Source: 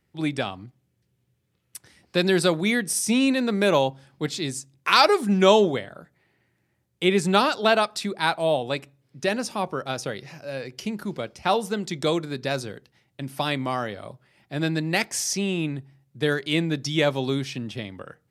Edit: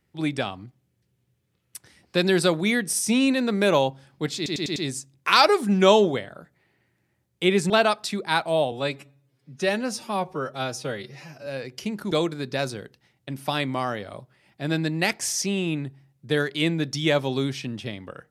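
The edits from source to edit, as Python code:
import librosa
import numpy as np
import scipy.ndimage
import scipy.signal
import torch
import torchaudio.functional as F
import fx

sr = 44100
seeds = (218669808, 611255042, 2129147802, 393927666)

y = fx.edit(x, sr, fx.stutter(start_s=4.36, slice_s=0.1, count=5),
    fx.cut(start_s=7.3, length_s=0.32),
    fx.stretch_span(start_s=8.64, length_s=1.83, factor=1.5),
    fx.cut(start_s=11.12, length_s=0.91), tone=tone)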